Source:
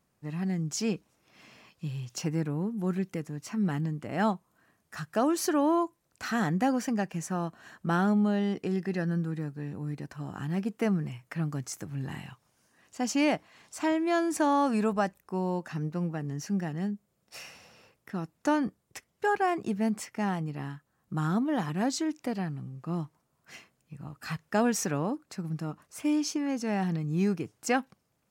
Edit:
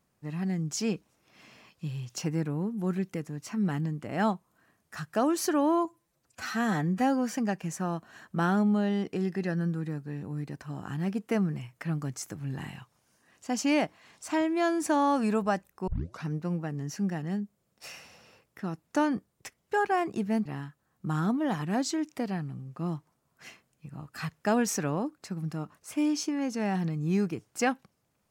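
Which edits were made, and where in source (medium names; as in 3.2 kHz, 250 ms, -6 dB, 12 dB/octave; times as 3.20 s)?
5.85–6.84 s: stretch 1.5×
15.38 s: tape start 0.36 s
19.96–20.53 s: delete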